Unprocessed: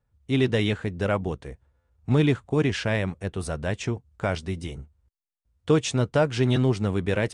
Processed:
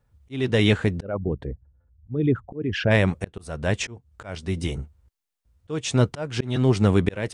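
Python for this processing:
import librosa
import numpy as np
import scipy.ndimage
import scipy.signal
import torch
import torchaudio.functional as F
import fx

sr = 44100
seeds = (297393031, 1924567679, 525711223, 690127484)

y = fx.envelope_sharpen(x, sr, power=2.0, at=(1.01, 2.9), fade=0.02)
y = fx.auto_swell(y, sr, attack_ms=428.0)
y = F.gain(torch.from_numpy(y), 7.0).numpy()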